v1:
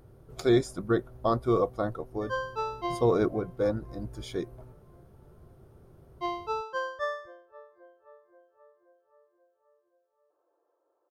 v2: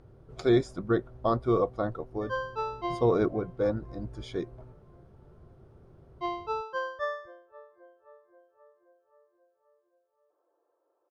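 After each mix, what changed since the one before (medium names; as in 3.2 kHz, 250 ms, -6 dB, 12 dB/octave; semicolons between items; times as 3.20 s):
master: add distance through air 87 m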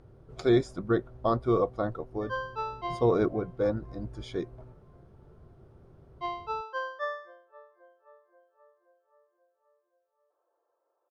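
background: add band-pass 520–6300 Hz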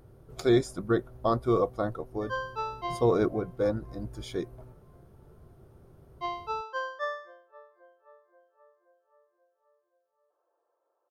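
master: remove distance through air 87 m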